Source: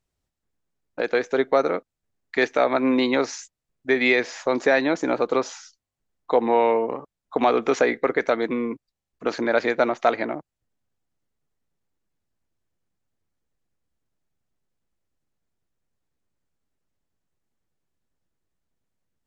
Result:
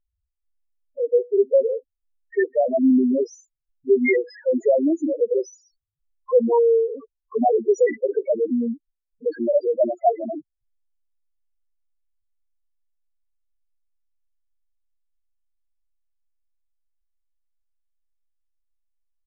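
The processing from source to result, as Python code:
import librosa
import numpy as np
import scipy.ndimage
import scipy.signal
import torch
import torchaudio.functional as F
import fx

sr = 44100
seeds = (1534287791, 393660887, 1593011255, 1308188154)

y = fx.spec_topn(x, sr, count=2)
y = fx.env_lowpass(y, sr, base_hz=3000.0, full_db=-21.0)
y = y * librosa.db_to_amplitude(6.5)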